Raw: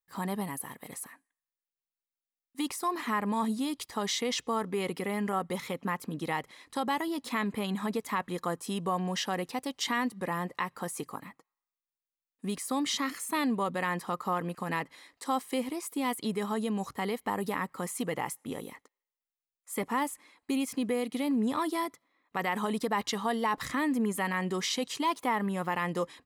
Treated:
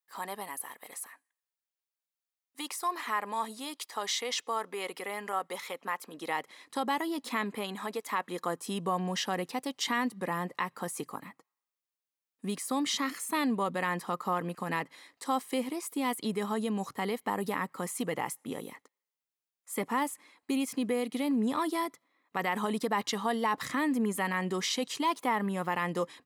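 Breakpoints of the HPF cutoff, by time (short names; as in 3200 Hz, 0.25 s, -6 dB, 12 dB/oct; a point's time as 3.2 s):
6.08 s 530 Hz
6.63 s 200 Hz
7.3 s 200 Hz
7.94 s 420 Hz
8.91 s 130 Hz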